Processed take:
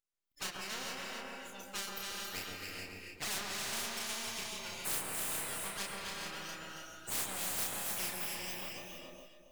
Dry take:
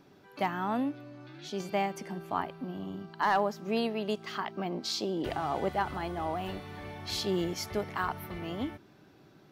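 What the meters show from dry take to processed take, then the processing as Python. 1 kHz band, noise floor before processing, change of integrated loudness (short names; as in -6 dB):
-13.0 dB, -59 dBFS, -5.0 dB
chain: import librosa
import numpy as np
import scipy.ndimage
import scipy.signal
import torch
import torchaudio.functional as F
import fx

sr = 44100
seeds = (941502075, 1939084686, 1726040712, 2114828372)

y = fx.bin_expand(x, sr, power=3.0)
y = fx.highpass(y, sr, hz=1000.0, slope=6)
y = np.abs(y)
y = fx.high_shelf(y, sr, hz=6600.0, db=6.0)
y = np.clip(10.0 ** (33.0 / 20.0) * y, -1.0, 1.0) / 10.0 ** (33.0 / 20.0)
y = fx.doubler(y, sr, ms=31.0, db=-4.0)
y = fx.echo_alternate(y, sr, ms=138, hz=1300.0, feedback_pct=55, wet_db=-2.0)
y = fx.rev_gated(y, sr, seeds[0], gate_ms=470, shape='rising', drr_db=3.5)
y = fx.spectral_comp(y, sr, ratio=4.0)
y = y * 10.0 ** (3.0 / 20.0)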